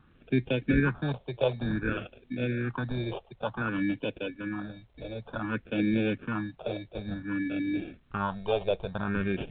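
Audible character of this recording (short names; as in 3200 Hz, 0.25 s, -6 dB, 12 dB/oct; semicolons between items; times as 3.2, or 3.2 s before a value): aliases and images of a low sample rate 2000 Hz, jitter 0%; phasing stages 4, 0.55 Hz, lowest notch 250–1200 Hz; A-law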